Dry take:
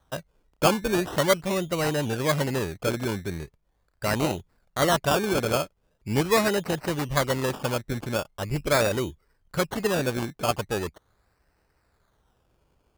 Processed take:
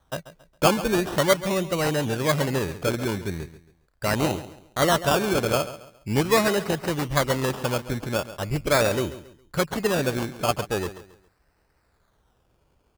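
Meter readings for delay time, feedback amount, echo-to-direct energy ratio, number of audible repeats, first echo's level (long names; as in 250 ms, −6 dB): 137 ms, 33%, −14.0 dB, 3, −14.5 dB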